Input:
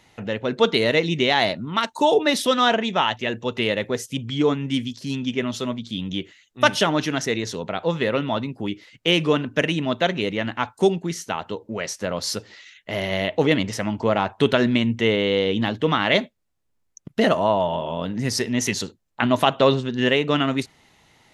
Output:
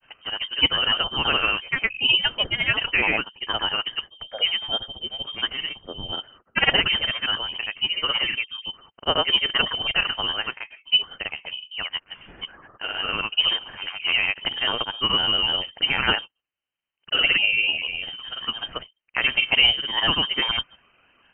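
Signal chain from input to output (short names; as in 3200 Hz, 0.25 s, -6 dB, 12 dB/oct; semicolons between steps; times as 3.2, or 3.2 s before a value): steep high-pass 260 Hz 96 dB/oct; grains, pitch spread up and down by 3 st; inverted band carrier 3400 Hz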